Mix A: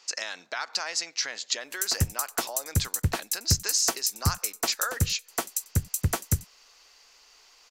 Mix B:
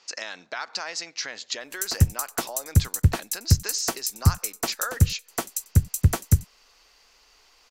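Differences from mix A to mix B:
speech: add distance through air 58 m; master: add bass shelf 250 Hz +9 dB

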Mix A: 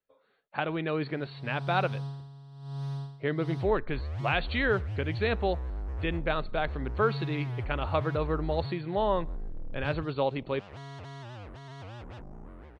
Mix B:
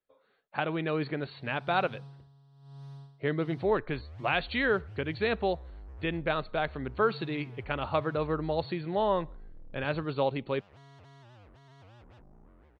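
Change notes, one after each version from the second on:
background -11.0 dB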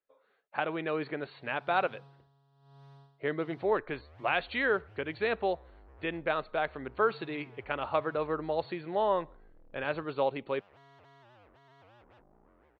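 master: add tone controls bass -11 dB, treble -11 dB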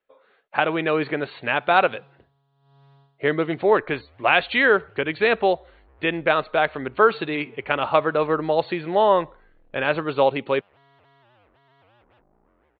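speech +10.5 dB; master: add resonant high shelf 5.1 kHz -13 dB, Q 1.5

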